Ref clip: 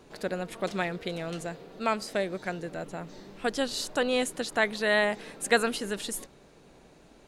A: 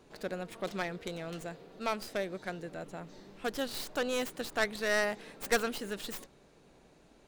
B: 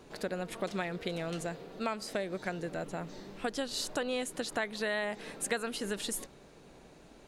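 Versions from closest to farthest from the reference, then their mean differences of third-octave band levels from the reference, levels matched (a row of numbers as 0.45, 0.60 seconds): A, B; 2.0, 4.0 decibels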